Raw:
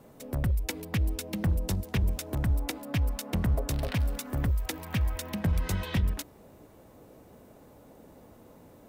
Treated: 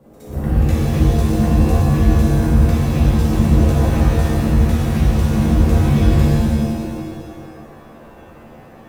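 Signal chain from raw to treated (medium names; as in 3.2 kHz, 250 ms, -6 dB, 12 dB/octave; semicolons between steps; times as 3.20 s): tilt shelf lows +4.5 dB, about 1.2 kHz; reverse echo 66 ms -12 dB; pitch-shifted reverb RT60 1.9 s, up +7 st, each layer -2 dB, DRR -8 dB; trim -3 dB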